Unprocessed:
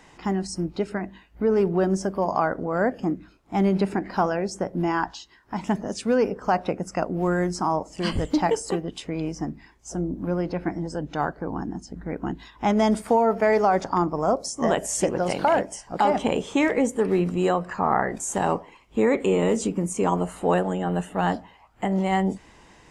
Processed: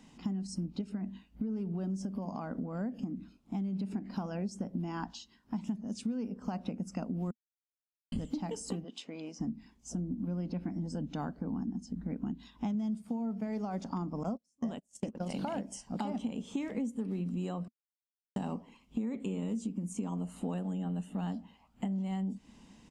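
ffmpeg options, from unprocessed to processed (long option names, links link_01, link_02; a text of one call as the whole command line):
ffmpeg -i in.wav -filter_complex "[0:a]asettb=1/sr,asplit=3[link_01][link_02][link_03];[link_01]atrim=end=0.814[link_04];[link_02]atrim=start=0.81:end=3.96,asetpts=PTS-STARTPTS,afade=type=in:duration=0.004:curve=qsin,afade=type=out:start_time=3.146:duration=0.004:curve=qsin,acompressor=threshold=-29dB:ratio=2:attack=3.2:release=140:knee=1:detection=peak[link_05];[link_03]atrim=start=3.956[link_06];[link_04][link_05]acrossfade=duration=0.004:curve1=hsin:curve2=qsin[link_07];[link_07][link_06]acrossfade=duration=0.004:curve1=qsin:curve2=hsin,asplit=3[link_08][link_09][link_10];[link_08]afade=type=out:start_time=8.83:duration=0.02[link_11];[link_09]highpass=450,lowpass=6500,afade=type=in:start_time=8.83:duration=0.02,afade=type=out:start_time=9.39:duration=0.02[link_12];[link_10]afade=type=in:start_time=9.39:duration=0.02[link_13];[link_11][link_12][link_13]amix=inputs=3:normalize=0,asettb=1/sr,asplit=3[link_14][link_15][link_16];[link_14]atrim=end=12.744[link_17];[link_15]atrim=start=12.74:end=13.47,asetpts=PTS-STARTPTS,afade=type=in:duration=0.004:curve=qsin,afade=type=out:start_time=0.726:duration=0.004:curve=qsin,equalizer=frequency=150:width_type=o:width=0.77:gain=9[link_18];[link_16]atrim=start=13.466[link_19];[link_17][link_18]acrossfade=duration=0.004:curve1=hsin:curve2=qsin[link_20];[link_20][link_19]acrossfade=duration=0.004:curve1=qsin:curve2=hsin,asettb=1/sr,asplit=3[link_21][link_22][link_23];[link_21]atrim=end=14.234[link_24];[link_22]atrim=start=14.23:end=15.34,asetpts=PTS-STARTPTS,afade=type=in:duration=0.004:curve=qsin,afade=type=out:start_time=1.106:duration=0.004:curve=qsin,agate=range=-36dB:threshold=-25dB:ratio=16:release=100:detection=peak[link_25];[link_23]atrim=start=15.336[link_26];[link_24][link_25]acrossfade=duration=0.004:curve1=hsin:curve2=qsin[link_27];[link_27][link_26]acrossfade=duration=0.004:curve1=qsin:curve2=hsin,asplit=5[link_28][link_29][link_30][link_31][link_32];[link_28]atrim=end=7.31,asetpts=PTS-STARTPTS,afade=type=out:start_time=7.306:duration=0.004:curve=hsin[link_33];[link_29]atrim=start=7.31:end=8.12,asetpts=PTS-STARTPTS,volume=0[link_34];[link_30]atrim=start=8.12:end=17.68,asetpts=PTS-STARTPTS,afade=type=in:duration=0.004:curve=hsin,afade=type=out:start_time=9.556:duration=0.004:curve=hsin[link_35];[link_31]atrim=start=17.68:end=18.36,asetpts=PTS-STARTPTS,volume=0[link_36];[link_32]atrim=start=18.36,asetpts=PTS-STARTPTS,afade=type=in:duration=0.004:curve=hsin[link_37];[link_33][link_34][link_35][link_36][link_37]concat=n=5:v=0:a=1,firequalizer=gain_entry='entry(120,0);entry(230,14);entry(340,-4);entry(1200,-6);entry(1800,-9);entry(2800,0)':delay=0.05:min_phase=1,acompressor=threshold=-25dB:ratio=10,volume=-7dB" out.wav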